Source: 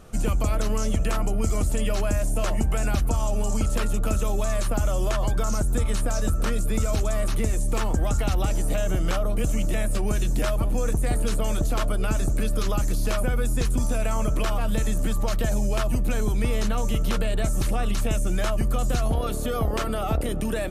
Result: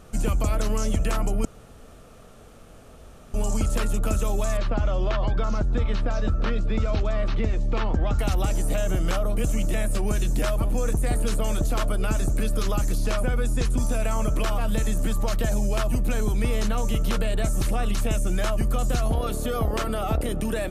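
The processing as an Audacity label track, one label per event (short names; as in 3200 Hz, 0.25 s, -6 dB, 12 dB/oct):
1.450000	3.340000	room tone
4.570000	8.190000	LPF 4400 Hz 24 dB/oct
12.980000	13.790000	Bessel low-pass 9200 Hz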